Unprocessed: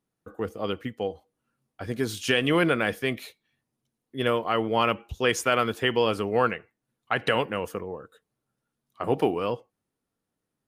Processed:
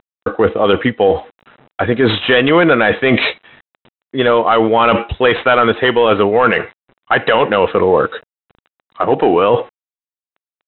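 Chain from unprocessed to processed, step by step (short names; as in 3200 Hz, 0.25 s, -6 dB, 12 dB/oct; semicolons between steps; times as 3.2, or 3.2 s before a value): CVSD 64 kbps; overdrive pedal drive 10 dB, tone 1600 Hz, clips at -9.5 dBFS; Chebyshev low-pass 3900 Hz, order 10; reverse; compressor 20:1, threshold -36 dBFS, peak gain reduction 19 dB; reverse; maximiser +31.5 dB; gain -1 dB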